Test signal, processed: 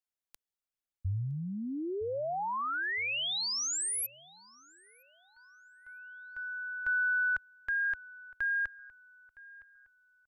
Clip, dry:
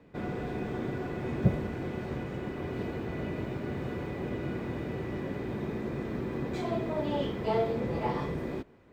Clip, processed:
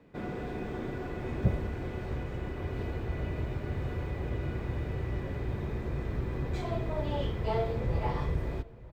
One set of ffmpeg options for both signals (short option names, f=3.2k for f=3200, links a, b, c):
-filter_complex "[0:a]asubboost=boost=11:cutoff=68,acontrast=64,asplit=2[a][b];[b]adelay=963,lowpass=f=2.7k:p=1,volume=-20dB,asplit=2[c][d];[d]adelay=963,lowpass=f=2.7k:p=1,volume=0.41,asplit=2[e][f];[f]adelay=963,lowpass=f=2.7k:p=1,volume=0.41[g];[a][c][e][g]amix=inputs=4:normalize=0,volume=-8dB"